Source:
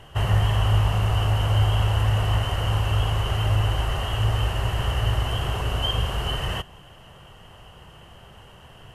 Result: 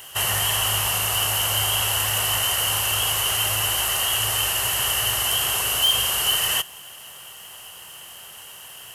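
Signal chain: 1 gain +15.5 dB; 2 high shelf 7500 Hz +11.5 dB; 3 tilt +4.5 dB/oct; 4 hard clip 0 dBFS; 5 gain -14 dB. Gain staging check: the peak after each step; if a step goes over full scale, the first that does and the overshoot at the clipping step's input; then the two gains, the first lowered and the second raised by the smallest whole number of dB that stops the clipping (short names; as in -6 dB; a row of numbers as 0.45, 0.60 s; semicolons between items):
+6.5, +6.5, +8.5, 0.0, -14.0 dBFS; step 1, 8.5 dB; step 1 +6.5 dB, step 5 -5 dB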